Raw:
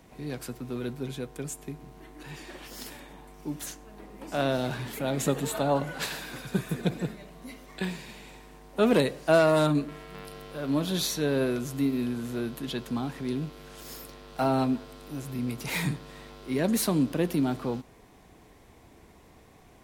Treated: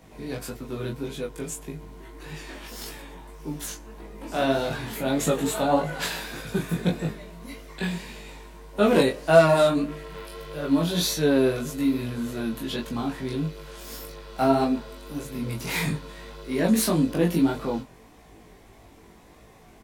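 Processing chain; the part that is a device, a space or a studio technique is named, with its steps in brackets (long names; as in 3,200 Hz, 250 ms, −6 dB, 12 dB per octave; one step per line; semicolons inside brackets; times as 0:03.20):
double-tracked vocal (double-tracking delay 18 ms −3 dB; chorus effect 1.7 Hz, delay 19.5 ms, depth 3.8 ms)
level +5 dB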